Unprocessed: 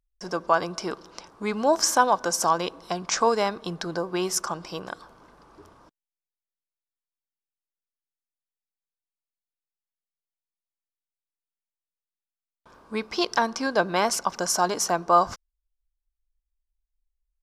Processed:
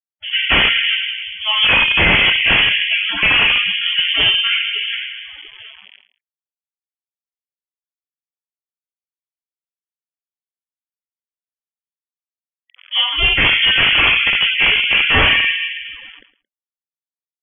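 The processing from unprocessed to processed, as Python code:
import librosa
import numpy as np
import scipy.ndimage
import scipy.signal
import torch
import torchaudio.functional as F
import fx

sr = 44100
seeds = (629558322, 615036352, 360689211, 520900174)

p1 = fx.cycle_switch(x, sr, every=2, mode='inverted')
p2 = fx.env_lowpass(p1, sr, base_hz=770.0, full_db=-20.0)
p3 = fx.spec_gate(p2, sr, threshold_db=-30, keep='strong')
p4 = fx.clip_asym(p3, sr, top_db=-16.5, bottom_db=-10.0)
p5 = p3 + F.gain(torch.from_numpy(p4), -7.0).numpy()
p6 = fx.rev_fdn(p5, sr, rt60_s=1.6, lf_ratio=1.25, hf_ratio=0.4, size_ms=49.0, drr_db=-8.5)
p7 = fx.quant_dither(p6, sr, seeds[0], bits=6, dither='none')
p8 = fx.spec_topn(p7, sr, count=64)
p9 = 10.0 ** (-7.5 / 20.0) * (np.abs((p8 / 10.0 ** (-7.5 / 20.0) + 3.0) % 4.0 - 2.0) - 1.0)
p10 = fx.freq_invert(p9, sr, carrier_hz=3300)
p11 = fx.low_shelf(p10, sr, hz=270.0, db=10.0)
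p12 = fx.echo_feedback(p11, sr, ms=111, feedback_pct=21, wet_db=-22.0)
y = fx.sustainer(p12, sr, db_per_s=130.0)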